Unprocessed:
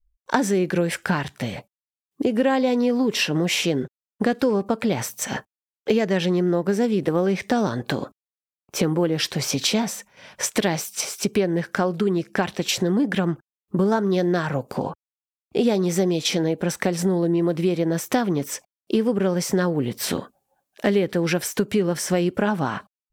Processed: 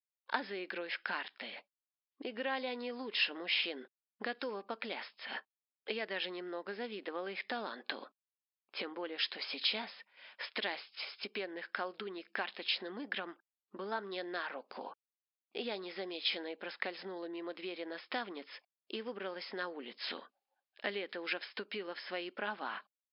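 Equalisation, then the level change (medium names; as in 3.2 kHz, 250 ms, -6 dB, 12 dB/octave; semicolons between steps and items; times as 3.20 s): brick-wall FIR band-pass 190–5300 Hz; distance through air 290 m; differentiator; +5.0 dB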